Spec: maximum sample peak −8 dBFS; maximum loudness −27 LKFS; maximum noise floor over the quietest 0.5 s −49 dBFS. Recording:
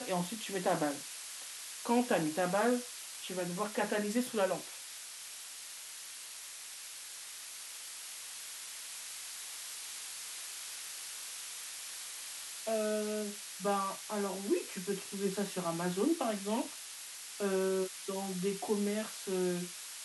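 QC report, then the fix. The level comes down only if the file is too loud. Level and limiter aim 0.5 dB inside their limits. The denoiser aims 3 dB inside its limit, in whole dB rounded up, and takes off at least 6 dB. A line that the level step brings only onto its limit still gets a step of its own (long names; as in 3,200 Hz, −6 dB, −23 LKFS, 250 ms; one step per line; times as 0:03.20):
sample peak −16.0 dBFS: in spec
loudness −37.0 LKFS: in spec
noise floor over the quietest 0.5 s −47 dBFS: out of spec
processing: broadband denoise 6 dB, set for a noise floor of −47 dBFS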